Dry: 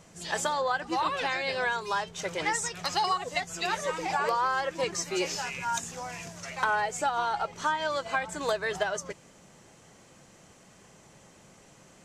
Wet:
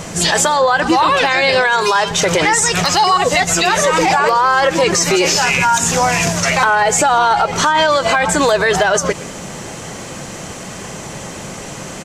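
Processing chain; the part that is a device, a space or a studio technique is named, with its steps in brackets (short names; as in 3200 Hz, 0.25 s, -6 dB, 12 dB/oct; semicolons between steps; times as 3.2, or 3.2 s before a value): 1.62–2.11 low shelf 220 Hz -10.5 dB; echo 0.117 s -23 dB; loud club master (compressor 1.5:1, threshold -34 dBFS, peak gain reduction 4.5 dB; hard clip -21.5 dBFS, distortion -32 dB; maximiser +30.5 dB); gain -4 dB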